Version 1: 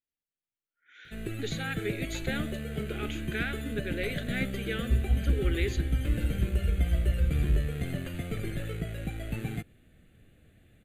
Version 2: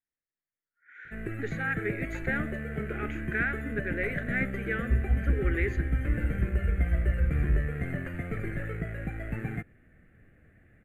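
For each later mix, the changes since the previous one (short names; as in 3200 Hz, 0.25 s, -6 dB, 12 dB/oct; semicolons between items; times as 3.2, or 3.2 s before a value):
master: add resonant high shelf 2600 Hz -11.5 dB, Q 3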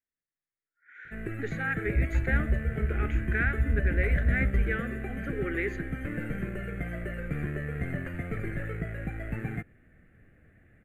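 second sound: entry -2.95 s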